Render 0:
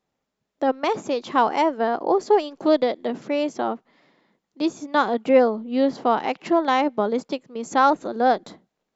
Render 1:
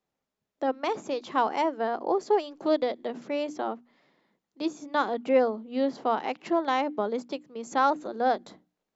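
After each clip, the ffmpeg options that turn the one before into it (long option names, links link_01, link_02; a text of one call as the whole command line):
ffmpeg -i in.wav -filter_complex "[0:a]bandreject=frequency=60:width_type=h:width=6,bandreject=frequency=120:width_type=h:width=6,bandreject=frequency=180:width_type=h:width=6,bandreject=frequency=240:width_type=h:width=6,bandreject=frequency=300:width_type=h:width=6,acrossover=split=160[link_01][link_02];[link_01]acompressor=threshold=-54dB:ratio=6[link_03];[link_03][link_02]amix=inputs=2:normalize=0,volume=-6dB" out.wav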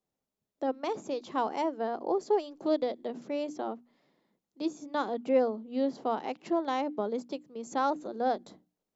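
ffmpeg -i in.wav -af "equalizer=frequency=1800:width_type=o:width=2.3:gain=-7,volume=-1.5dB" out.wav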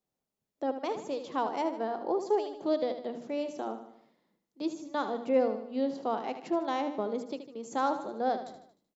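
ffmpeg -i in.wav -af "aecho=1:1:76|152|228|304|380:0.316|0.158|0.0791|0.0395|0.0198,volume=-1dB" out.wav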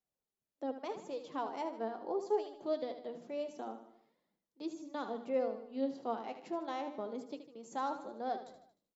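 ffmpeg -i in.wav -af "flanger=delay=1.2:depth=9:regen=53:speed=0.23:shape=triangular,volume=-3.5dB" out.wav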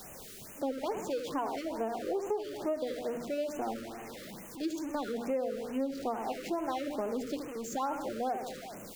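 ffmpeg -i in.wav -af "aeval=exprs='val(0)+0.5*0.00562*sgn(val(0))':channel_layout=same,acompressor=threshold=-35dB:ratio=20,afftfilt=real='re*(1-between(b*sr/1024,820*pow(4400/820,0.5+0.5*sin(2*PI*2.3*pts/sr))/1.41,820*pow(4400/820,0.5+0.5*sin(2*PI*2.3*pts/sr))*1.41))':imag='im*(1-between(b*sr/1024,820*pow(4400/820,0.5+0.5*sin(2*PI*2.3*pts/sr))/1.41,820*pow(4400/820,0.5+0.5*sin(2*PI*2.3*pts/sr))*1.41))':win_size=1024:overlap=0.75,volume=6.5dB" out.wav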